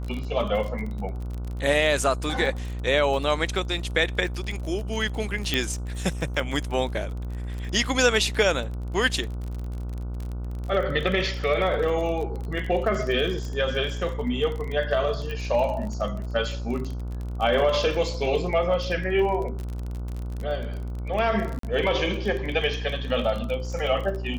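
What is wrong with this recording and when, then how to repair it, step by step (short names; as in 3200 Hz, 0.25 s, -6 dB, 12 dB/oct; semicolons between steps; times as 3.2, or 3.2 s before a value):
buzz 60 Hz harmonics 25 -31 dBFS
crackle 29/s -30 dBFS
5.54 pop -9 dBFS
15.31 pop -22 dBFS
21.59–21.63 gap 43 ms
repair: de-click; de-hum 60 Hz, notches 25; interpolate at 21.59, 43 ms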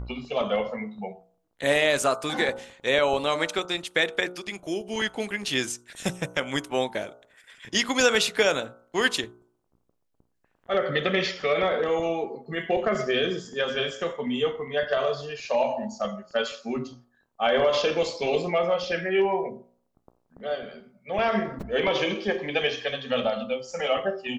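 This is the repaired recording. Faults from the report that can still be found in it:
5.54 pop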